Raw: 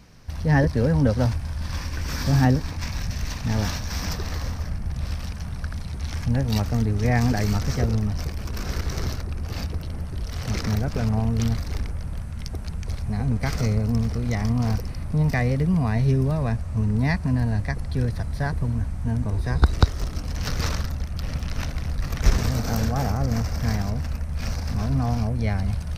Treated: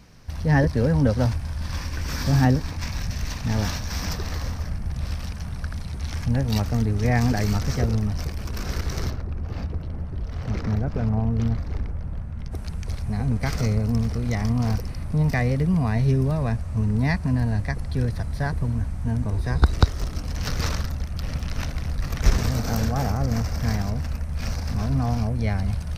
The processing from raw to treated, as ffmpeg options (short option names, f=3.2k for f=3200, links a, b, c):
-filter_complex "[0:a]asplit=3[a][b][c];[a]afade=t=out:st=9.09:d=0.02[d];[b]lowpass=f=1.2k:p=1,afade=t=in:st=9.09:d=0.02,afade=t=out:st=12.51:d=0.02[e];[c]afade=t=in:st=12.51:d=0.02[f];[d][e][f]amix=inputs=3:normalize=0"